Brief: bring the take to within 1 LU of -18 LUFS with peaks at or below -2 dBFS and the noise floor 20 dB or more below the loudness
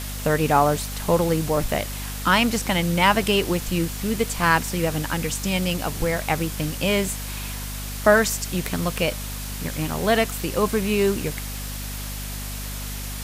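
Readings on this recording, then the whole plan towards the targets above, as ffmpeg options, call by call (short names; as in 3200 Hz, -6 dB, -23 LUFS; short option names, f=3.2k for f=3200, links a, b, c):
hum 50 Hz; harmonics up to 250 Hz; hum level -30 dBFS; noise floor -31 dBFS; noise floor target -43 dBFS; loudness -23.0 LUFS; peak -3.5 dBFS; loudness target -18.0 LUFS
-> -af "bandreject=f=50:t=h:w=4,bandreject=f=100:t=h:w=4,bandreject=f=150:t=h:w=4,bandreject=f=200:t=h:w=4,bandreject=f=250:t=h:w=4"
-af "afftdn=nr=12:nf=-31"
-af "volume=5dB,alimiter=limit=-2dB:level=0:latency=1"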